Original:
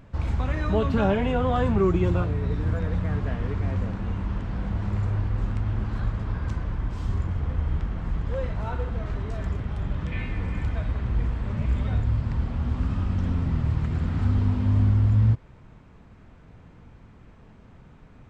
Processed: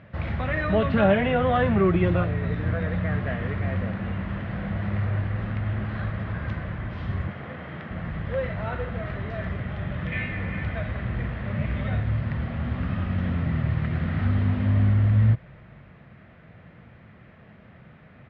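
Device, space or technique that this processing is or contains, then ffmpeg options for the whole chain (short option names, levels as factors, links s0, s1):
frequency-shifting delay pedal into a guitar cabinet: -filter_complex "[0:a]asettb=1/sr,asplit=3[s0][s1][s2];[s0]atrim=end=7.294[s3];[s1]atrim=start=7.29:end=7.91,asetpts=PTS-STARTPTS,afade=t=in:d=0.004:c=qsin,afade=t=out:st=0.616:d=0.004:c=qsin,highpass=200[s4];[s2]atrim=start=7.906[s5];[s3][s4]acrossfade=d=0.004:c1=hsin:c2=qsin[s6];[s6][s5]acrossfade=d=0.004:c1=qsin:c2=hsin,asplit=4[s7][s8][s9][s10];[s8]adelay=285,afreqshift=-81,volume=0.0668[s11];[s9]adelay=570,afreqshift=-162,volume=0.026[s12];[s10]adelay=855,afreqshift=-243,volume=0.0101[s13];[s7][s11][s12][s13]amix=inputs=4:normalize=0,highpass=110,equalizer=f=280:t=q:w=4:g=-7,equalizer=f=420:t=q:w=4:g=-5,equalizer=f=610:t=q:w=4:g=4,equalizer=f=930:t=q:w=4:g=-7,equalizer=f=1900:t=q:w=4:g=7,lowpass=f=3600:w=0.5412,lowpass=f=3600:w=1.3066,volume=1.58"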